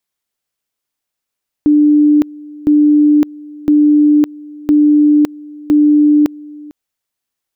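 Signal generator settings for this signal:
tone at two levels in turn 297 Hz −5.5 dBFS, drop 23 dB, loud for 0.56 s, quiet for 0.45 s, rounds 5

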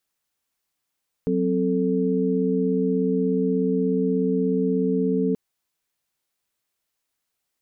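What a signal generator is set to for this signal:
held notes F#3/C4/A4 sine, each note −23.5 dBFS 4.08 s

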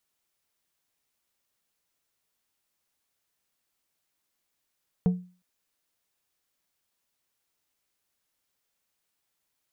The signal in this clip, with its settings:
struck glass plate, length 0.36 s, lowest mode 180 Hz, decay 0.37 s, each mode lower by 11 dB, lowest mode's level −16 dB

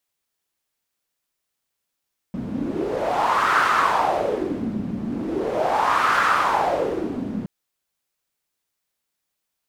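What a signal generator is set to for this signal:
wind from filtered noise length 5.12 s, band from 210 Hz, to 1,300 Hz, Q 4.3, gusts 2, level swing 9.5 dB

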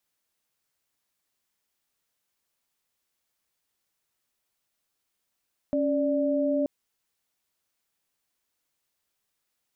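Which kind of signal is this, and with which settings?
held notes C#4/D5 sine, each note −25 dBFS 0.93 s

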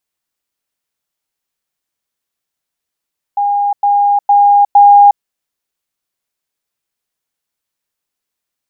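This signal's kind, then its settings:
level staircase 813 Hz −10.5 dBFS, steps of 3 dB, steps 4, 0.36 s 0.10 s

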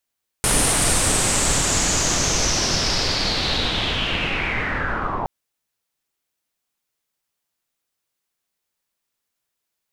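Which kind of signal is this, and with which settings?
filter sweep on noise pink, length 4.82 s lowpass, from 9,700 Hz, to 850 Hz, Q 4.8, linear, gain ramp −6.5 dB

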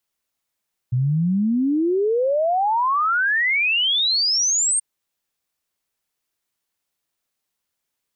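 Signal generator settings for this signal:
exponential sine sweep 120 Hz → 8,800 Hz 3.88 s −16.5 dBFS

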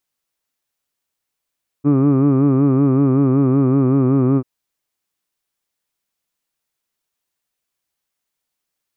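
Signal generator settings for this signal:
vowel from formants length 2.59 s, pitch 139 Hz, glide −1 semitone, F1 320 Hz, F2 1,200 Hz, F3 2,400 Hz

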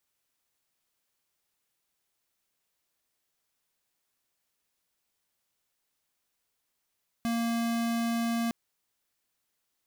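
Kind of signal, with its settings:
tone square 232 Hz −29 dBFS 1.26 s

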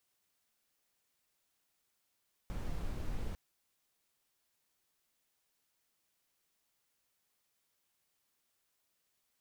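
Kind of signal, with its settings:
noise brown, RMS −37 dBFS 0.85 s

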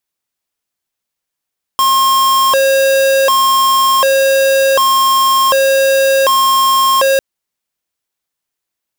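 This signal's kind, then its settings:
siren hi-lo 541–1,070 Hz 0.67 per second square −10.5 dBFS 5.40 s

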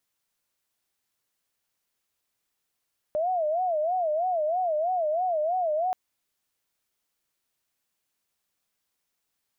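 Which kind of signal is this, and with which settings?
siren wail 602–745 Hz 3.1 per second sine −23 dBFS 2.78 s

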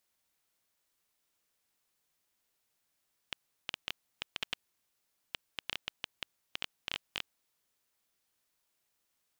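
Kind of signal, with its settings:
Geiger counter clicks 7.4 per second −16.5 dBFS 3.97 s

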